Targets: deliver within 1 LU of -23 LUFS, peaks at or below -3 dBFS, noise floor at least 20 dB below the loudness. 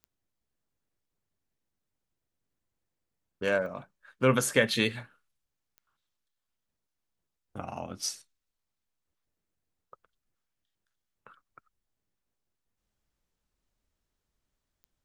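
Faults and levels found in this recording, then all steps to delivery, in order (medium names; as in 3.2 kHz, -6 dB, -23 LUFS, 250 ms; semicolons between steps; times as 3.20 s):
clicks found 4; loudness -29.0 LUFS; peak level -8.0 dBFS; loudness target -23.0 LUFS
-> de-click; trim +6 dB; peak limiter -3 dBFS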